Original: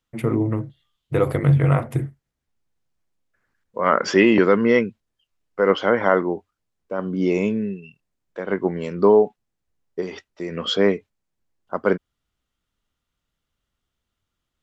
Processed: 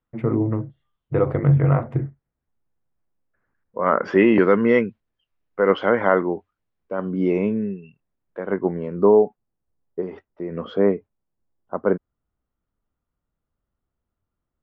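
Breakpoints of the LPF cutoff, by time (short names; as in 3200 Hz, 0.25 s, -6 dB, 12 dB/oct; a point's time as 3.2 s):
4 s 1500 Hz
4.51 s 2700 Hz
6.96 s 2700 Hz
7.5 s 1700 Hz
8.41 s 1700 Hz
8.92 s 1100 Hz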